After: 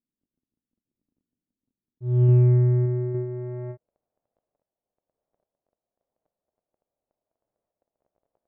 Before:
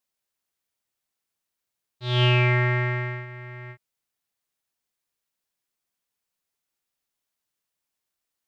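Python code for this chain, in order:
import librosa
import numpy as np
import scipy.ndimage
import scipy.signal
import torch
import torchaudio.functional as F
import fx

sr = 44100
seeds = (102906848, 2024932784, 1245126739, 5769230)

y = fx.dmg_crackle(x, sr, seeds[0], per_s=14.0, level_db=-52.0)
y = fx.tremolo_random(y, sr, seeds[1], hz=3.5, depth_pct=55)
y = fx.filter_sweep_lowpass(y, sr, from_hz=260.0, to_hz=620.0, start_s=2.68, end_s=3.97, q=3.1)
y = F.gain(torch.from_numpy(y), 6.5).numpy()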